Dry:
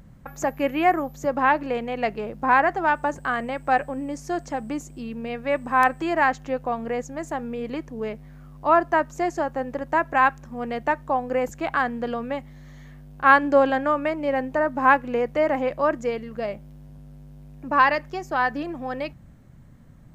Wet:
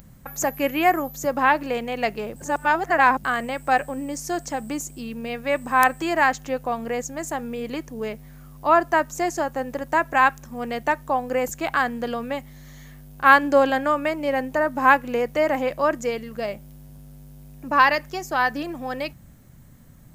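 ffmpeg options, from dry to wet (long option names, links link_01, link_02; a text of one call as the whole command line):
ffmpeg -i in.wav -filter_complex "[0:a]asplit=3[link_01][link_02][link_03];[link_01]atrim=end=2.362[link_04];[link_02]atrim=start=2.358:end=3.242,asetpts=PTS-STARTPTS,areverse[link_05];[link_03]atrim=start=3.238[link_06];[link_04][link_05]acrossfade=duration=0.004:curve1=hsin:curve2=hsin[link_07];[link_07][link_06]acrossfade=duration=0.004:curve1=hsin:curve2=hsin,aemphasis=mode=production:type=75kf" out.wav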